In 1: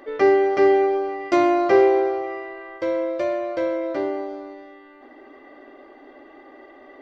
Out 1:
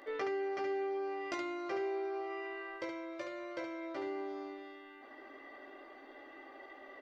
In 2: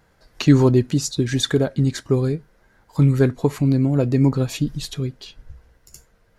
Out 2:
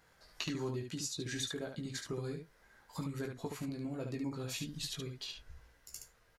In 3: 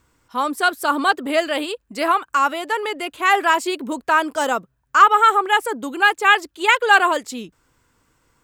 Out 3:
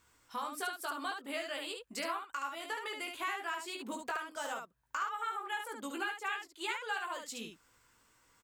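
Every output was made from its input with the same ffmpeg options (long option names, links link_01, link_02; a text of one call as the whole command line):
ffmpeg -i in.wav -af "tiltshelf=frequency=700:gain=-5,acompressor=threshold=-30dB:ratio=5,aecho=1:1:18|72:0.596|0.562,volume=-9dB" out.wav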